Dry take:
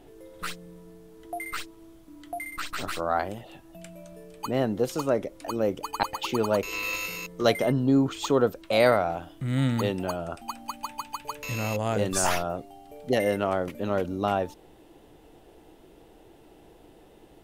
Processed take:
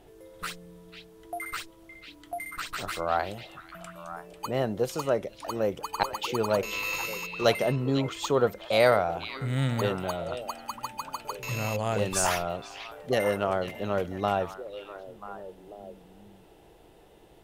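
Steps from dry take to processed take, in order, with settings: bell 270 Hz -7 dB 0.56 oct; delay with a stepping band-pass 0.493 s, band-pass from 3100 Hz, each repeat -1.4 oct, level -6.5 dB; added harmonics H 6 -40 dB, 7 -37 dB, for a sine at -8 dBFS

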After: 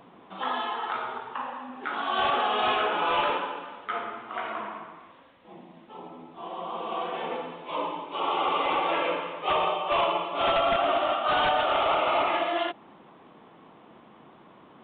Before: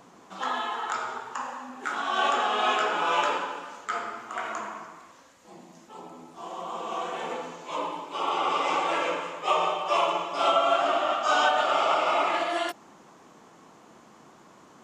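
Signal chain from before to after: bell 1500 Hz -3.5 dB 0.8 oct; wavefolder -19 dBFS; downsampling 8000 Hz; gain +1.5 dB

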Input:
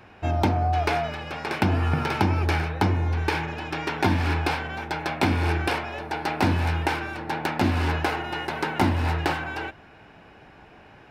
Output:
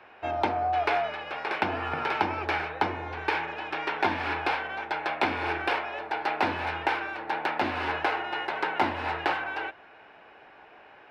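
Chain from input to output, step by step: three-band isolator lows -19 dB, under 370 Hz, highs -18 dB, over 4000 Hz

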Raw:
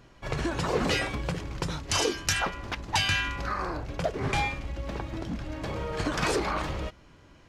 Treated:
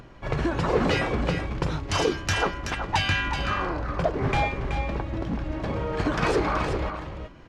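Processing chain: LPF 2000 Hz 6 dB/oct; upward compressor, threshold -46 dBFS; echo 0.377 s -7.5 dB; gain +4.5 dB

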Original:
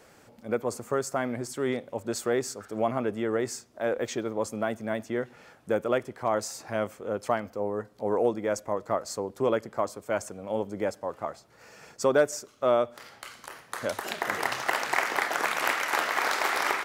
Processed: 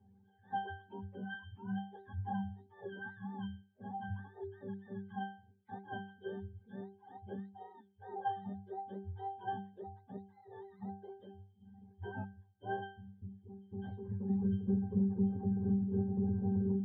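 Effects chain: spectrum mirrored in octaves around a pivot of 620 Hz; reverb removal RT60 1.2 s; octave resonator G, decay 0.43 s; gain +5.5 dB

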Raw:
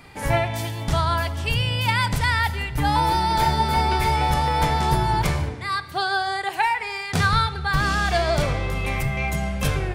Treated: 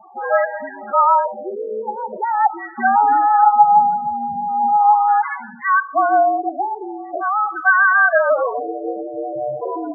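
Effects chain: 3.29–5.65 spectral delete 320–760 Hz; LFO low-pass sine 0.41 Hz 530–1800 Hz; 6.27–7.65 compressor, threshold -19 dBFS, peak gain reduction 6 dB; mistuned SSB -59 Hz 280–2400 Hz; loudest bins only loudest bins 8; gain +5.5 dB

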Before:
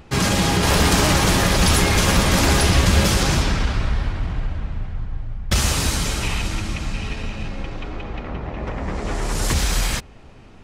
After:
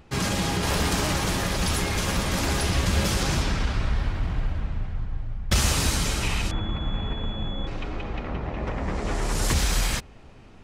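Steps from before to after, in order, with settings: 3.95–4.65 crackle 400/s -> 100/s -48 dBFS; vocal rider within 4 dB 2 s; 6.51–7.67 pulse-width modulation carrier 3400 Hz; gain -5.5 dB

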